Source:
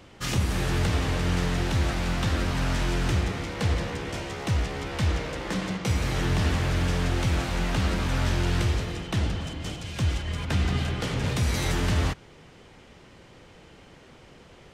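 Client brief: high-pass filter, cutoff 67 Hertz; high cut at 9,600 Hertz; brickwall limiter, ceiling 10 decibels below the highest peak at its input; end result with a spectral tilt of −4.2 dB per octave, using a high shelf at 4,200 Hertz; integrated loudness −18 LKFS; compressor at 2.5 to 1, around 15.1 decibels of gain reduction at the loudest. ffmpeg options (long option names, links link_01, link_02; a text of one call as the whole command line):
ffmpeg -i in.wav -af "highpass=67,lowpass=9600,highshelf=frequency=4200:gain=8.5,acompressor=threshold=-45dB:ratio=2.5,volume=27.5dB,alimiter=limit=-8.5dB:level=0:latency=1" out.wav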